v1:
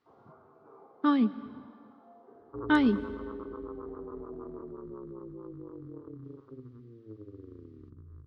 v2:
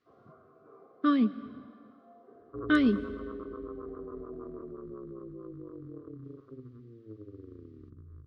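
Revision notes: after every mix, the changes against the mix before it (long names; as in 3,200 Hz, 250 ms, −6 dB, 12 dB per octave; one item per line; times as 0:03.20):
master: add Butterworth band-reject 880 Hz, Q 3.5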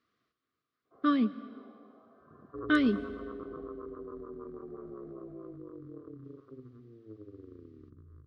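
first sound: entry +0.85 s
master: add low-shelf EQ 220 Hz −5 dB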